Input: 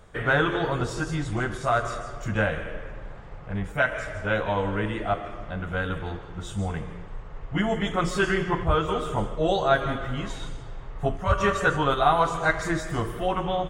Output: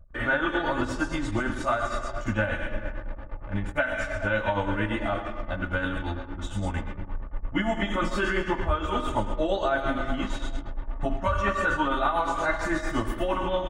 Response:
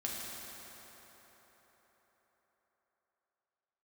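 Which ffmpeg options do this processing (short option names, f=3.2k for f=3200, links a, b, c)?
-filter_complex "[0:a]asplit=2[a][b];[b]equalizer=f=490:t=o:w=0.67:g=-12[c];[1:a]atrim=start_sample=2205,afade=t=out:st=0.25:d=0.01,atrim=end_sample=11466,asetrate=52920,aresample=44100[d];[c][d]afir=irnorm=-1:irlink=0,volume=-3dB[e];[a][e]amix=inputs=2:normalize=0,acrossover=split=3100[f][g];[g]acompressor=threshold=-42dB:ratio=4:attack=1:release=60[h];[f][h]amix=inputs=2:normalize=0,aecho=1:1:3.4:0.77,asplit=2[i][j];[j]adelay=408,lowpass=f=1.1k:p=1,volume=-15.5dB,asplit=2[k][l];[l]adelay=408,lowpass=f=1.1k:p=1,volume=0.34,asplit=2[m][n];[n]adelay=408,lowpass=f=1.1k:p=1,volume=0.34[o];[i][k][m][o]amix=inputs=4:normalize=0,tremolo=f=8.7:d=0.56,anlmdn=0.1,acompressor=threshold=-21dB:ratio=6"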